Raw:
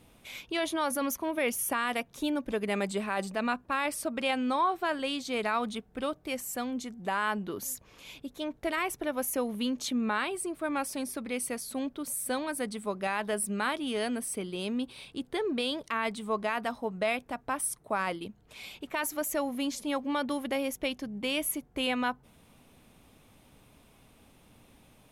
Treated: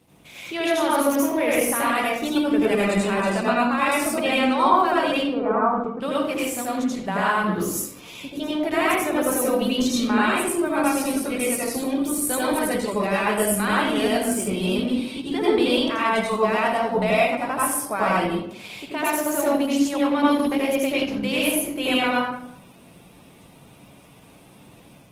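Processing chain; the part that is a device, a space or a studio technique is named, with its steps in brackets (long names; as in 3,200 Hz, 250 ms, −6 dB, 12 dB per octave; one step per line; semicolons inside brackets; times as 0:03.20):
0:05.11–0:06.00: elliptic band-pass filter 150–1,300 Hz, stop band 70 dB
far-field microphone of a smart speaker (convolution reverb RT60 0.75 s, pre-delay 78 ms, DRR −6.5 dB; high-pass filter 100 Hz 12 dB per octave; automatic gain control gain up to 3 dB; Opus 16 kbit/s 48,000 Hz)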